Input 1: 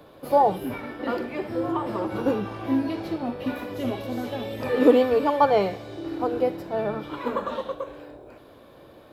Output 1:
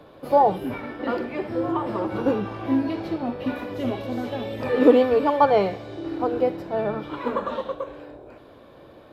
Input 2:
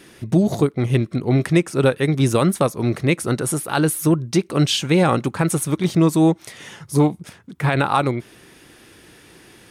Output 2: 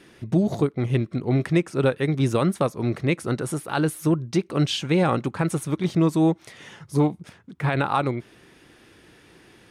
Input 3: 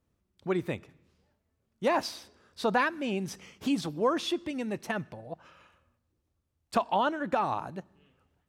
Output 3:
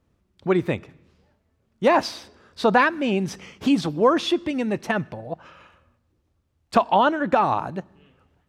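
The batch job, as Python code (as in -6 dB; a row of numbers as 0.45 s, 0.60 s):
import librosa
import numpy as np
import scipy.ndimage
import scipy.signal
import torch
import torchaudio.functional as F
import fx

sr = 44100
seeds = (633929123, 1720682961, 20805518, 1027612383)

y = fx.high_shelf(x, sr, hz=7200.0, db=-11.0)
y = y * 10.0 ** (-24 / 20.0) / np.sqrt(np.mean(np.square(y)))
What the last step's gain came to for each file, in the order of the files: +1.5 dB, -4.0 dB, +9.0 dB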